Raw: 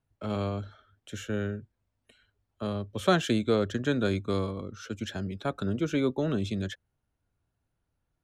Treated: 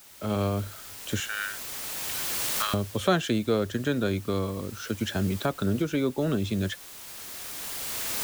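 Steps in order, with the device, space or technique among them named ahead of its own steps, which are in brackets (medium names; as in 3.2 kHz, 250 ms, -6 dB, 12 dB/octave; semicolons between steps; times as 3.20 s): 1.20–2.74 s: high-pass 1.2 kHz 24 dB/octave; cheap recorder with automatic gain (white noise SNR 20 dB; recorder AGC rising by 11 dB/s)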